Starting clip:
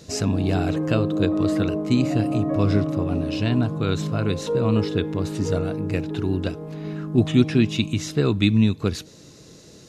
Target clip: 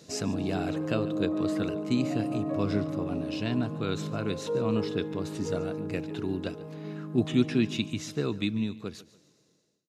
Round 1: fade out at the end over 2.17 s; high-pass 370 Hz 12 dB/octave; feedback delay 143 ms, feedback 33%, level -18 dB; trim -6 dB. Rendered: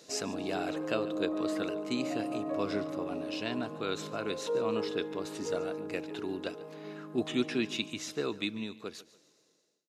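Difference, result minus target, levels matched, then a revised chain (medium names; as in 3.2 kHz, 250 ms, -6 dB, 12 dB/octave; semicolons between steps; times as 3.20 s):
125 Hz band -9.5 dB
fade out at the end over 2.17 s; high-pass 140 Hz 12 dB/octave; feedback delay 143 ms, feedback 33%, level -18 dB; trim -6 dB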